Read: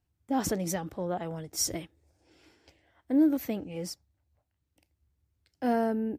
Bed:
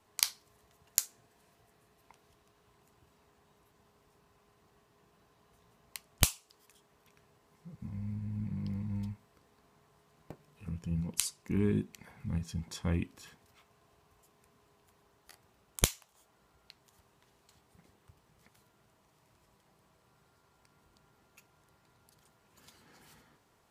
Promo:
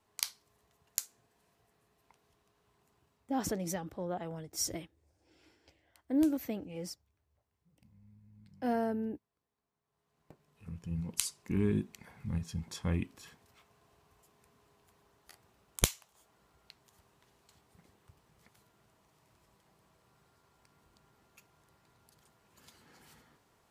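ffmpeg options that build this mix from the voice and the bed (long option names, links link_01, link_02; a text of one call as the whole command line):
ffmpeg -i stem1.wav -i stem2.wav -filter_complex "[0:a]adelay=3000,volume=-5dB[link_01];[1:a]volume=16dB,afade=type=out:start_time=2.97:duration=0.56:silence=0.149624,afade=type=in:start_time=9.84:duration=1.49:silence=0.0841395[link_02];[link_01][link_02]amix=inputs=2:normalize=0" out.wav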